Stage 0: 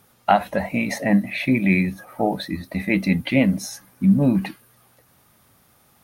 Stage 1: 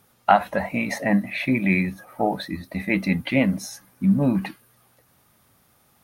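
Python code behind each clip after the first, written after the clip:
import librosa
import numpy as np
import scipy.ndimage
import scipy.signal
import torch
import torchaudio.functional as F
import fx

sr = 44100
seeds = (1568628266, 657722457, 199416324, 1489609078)

y = fx.dynamic_eq(x, sr, hz=1200.0, q=0.95, threshold_db=-36.0, ratio=4.0, max_db=6)
y = y * 10.0 ** (-3.0 / 20.0)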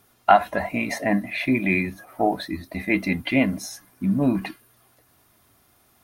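y = x + 0.43 * np.pad(x, (int(2.9 * sr / 1000.0), 0))[:len(x)]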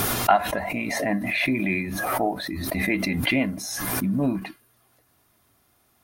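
y = fx.pre_swell(x, sr, db_per_s=25.0)
y = y * 10.0 ** (-4.0 / 20.0)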